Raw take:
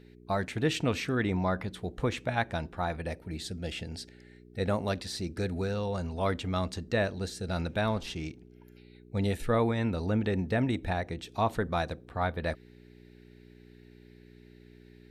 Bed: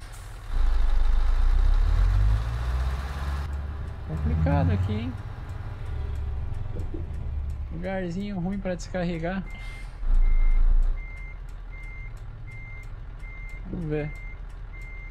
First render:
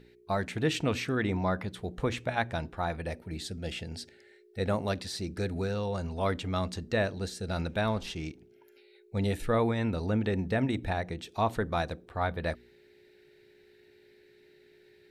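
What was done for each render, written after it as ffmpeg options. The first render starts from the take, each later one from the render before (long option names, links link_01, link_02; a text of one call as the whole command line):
ffmpeg -i in.wav -af "bandreject=frequency=60:width_type=h:width=4,bandreject=frequency=120:width_type=h:width=4,bandreject=frequency=180:width_type=h:width=4,bandreject=frequency=240:width_type=h:width=4,bandreject=frequency=300:width_type=h:width=4" out.wav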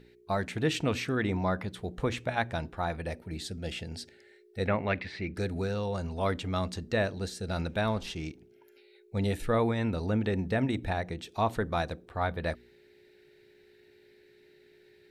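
ffmpeg -i in.wav -filter_complex "[0:a]asettb=1/sr,asplit=3[link_01][link_02][link_03];[link_01]atrim=end=4.674[link_04];[link_02]atrim=start=4.67:end=5.35,asetpts=PTS-STARTPTS,afade=type=in:duration=0.004:curve=qsin,afade=type=out:start_time=0.676:duration=0.004:curve=qsin,lowpass=frequency=2200:width_type=q:width=5.4[link_05];[link_03]atrim=start=5.346[link_06];[link_04][link_05]acrossfade=duration=0.004:curve1=hsin:curve2=qsin[link_07];[link_07][link_06]acrossfade=duration=0.004:curve1=qsin:curve2=hsin" out.wav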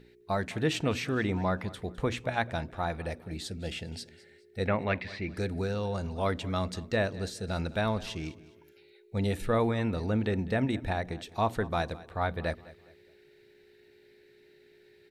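ffmpeg -i in.wav -af "aecho=1:1:207|414|621:0.106|0.036|0.0122" out.wav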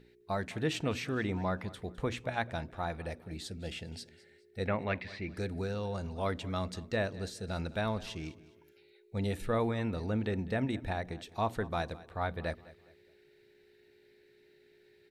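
ffmpeg -i in.wav -af "volume=-4dB" out.wav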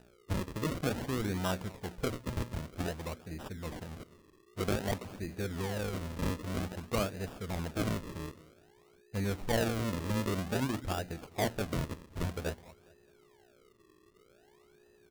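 ffmpeg -i in.wav -af "acrusher=samples=40:mix=1:aa=0.000001:lfo=1:lforange=40:lforate=0.52" out.wav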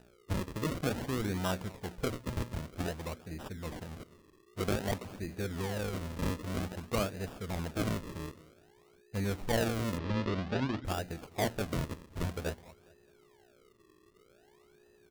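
ffmpeg -i in.wav -filter_complex "[0:a]asplit=3[link_01][link_02][link_03];[link_01]afade=type=out:start_time=9.97:duration=0.02[link_04];[link_02]lowpass=frequency=4700:width=0.5412,lowpass=frequency=4700:width=1.3066,afade=type=in:start_time=9.97:duration=0.02,afade=type=out:start_time=10.84:duration=0.02[link_05];[link_03]afade=type=in:start_time=10.84:duration=0.02[link_06];[link_04][link_05][link_06]amix=inputs=3:normalize=0" out.wav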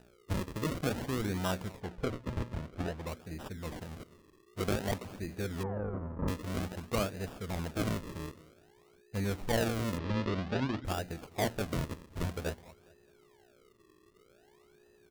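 ffmpeg -i in.wav -filter_complex "[0:a]asplit=3[link_01][link_02][link_03];[link_01]afade=type=out:start_time=1.8:duration=0.02[link_04];[link_02]lowpass=frequency=2700:poles=1,afade=type=in:start_time=1.8:duration=0.02,afade=type=out:start_time=3.06:duration=0.02[link_05];[link_03]afade=type=in:start_time=3.06:duration=0.02[link_06];[link_04][link_05][link_06]amix=inputs=3:normalize=0,asettb=1/sr,asplit=3[link_07][link_08][link_09];[link_07]atrim=end=5.634[link_10];[link_08]atrim=start=5.63:end=6.28,asetpts=PTS-STARTPTS,afade=type=in:duration=0.004:curve=qsin,afade=type=out:start_time=0.646:duration=0.004:curve=qsin,lowpass=frequency=1300:width=0.5412,lowpass=frequency=1300:width=1.3066[link_11];[link_09]atrim=start=6.276[link_12];[link_10][link_11]acrossfade=duration=0.004:curve1=hsin:curve2=qsin[link_13];[link_13][link_12]acrossfade=duration=0.004:curve1=qsin:curve2=hsin" out.wav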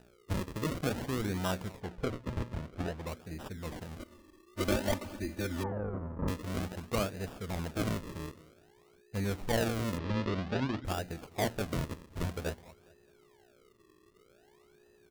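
ffmpeg -i in.wav -filter_complex "[0:a]asettb=1/sr,asplit=3[link_01][link_02][link_03];[link_01]atrim=end=3.994[link_04];[link_02]atrim=start=3.99:end=5.72,asetpts=PTS-STARTPTS,afade=type=in:duration=0.004:curve=qsin,afade=type=out:start_time=1.726:duration=0.004:curve=qsin,aecho=1:1:3.4:0.97,atrim=end_sample=76293[link_05];[link_03]atrim=start=5.716[link_06];[link_04][link_05]acrossfade=duration=0.004:curve1=hsin:curve2=qsin[link_07];[link_07][link_06]acrossfade=duration=0.004:curve1=qsin:curve2=hsin" out.wav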